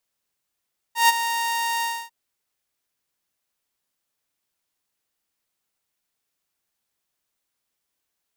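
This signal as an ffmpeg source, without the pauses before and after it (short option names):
-f lavfi -i "aevalsrc='0.355*(2*mod(928*t,1)-1)':d=1.147:s=44100,afade=t=in:d=0.137,afade=t=out:st=0.137:d=0.026:silence=0.282,afade=t=out:st=0.88:d=0.267"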